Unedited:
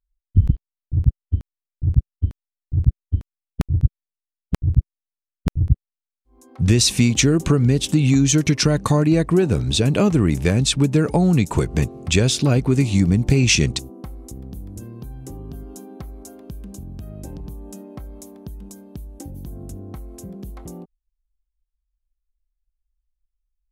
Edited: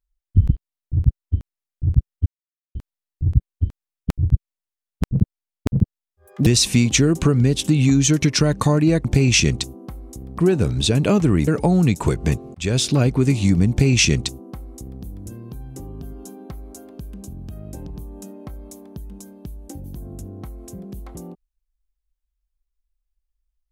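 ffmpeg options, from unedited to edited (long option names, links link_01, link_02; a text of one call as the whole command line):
ffmpeg -i in.wav -filter_complex "[0:a]asplit=8[link_01][link_02][link_03][link_04][link_05][link_06][link_07][link_08];[link_01]atrim=end=2.26,asetpts=PTS-STARTPTS,afade=type=out:start_time=2.256:duration=0.004:curve=hsin,apad=pad_dur=0.49[link_09];[link_02]atrim=start=2.26:end=4.644,asetpts=PTS-STARTPTS,afade=type=in:duration=0.004:curve=hsin[link_10];[link_03]atrim=start=4.64:end=6.71,asetpts=PTS-STARTPTS,asetrate=68355,aresample=44100[link_11];[link_04]atrim=start=6.706:end=9.292[link_12];[link_05]atrim=start=13.198:end=14.542[link_13];[link_06]atrim=start=9.288:end=10.382[link_14];[link_07]atrim=start=10.978:end=12.05,asetpts=PTS-STARTPTS,afade=type=out:start_time=1.068:duration=0.004:curve=hsin[link_15];[link_08]atrim=start=12.05,asetpts=PTS-STARTPTS,afade=type=in:duration=0.25[link_16];[link_09][link_10]concat=n=2:v=0:a=1[link_17];[link_17][link_11]acrossfade=duration=0.004:curve1=hsin:curve2=hsin[link_18];[link_18][link_12]acrossfade=duration=0.004:curve1=hsin:curve2=hsin[link_19];[link_19][link_13]acrossfade=duration=0.004:curve1=hsin:curve2=hsin[link_20];[link_20][link_14]acrossfade=duration=0.004:curve1=hsin:curve2=hsin[link_21];[link_15][link_16]concat=n=2:v=0:a=1[link_22];[link_21][link_22]acrossfade=duration=0.004:curve1=hsin:curve2=hsin" out.wav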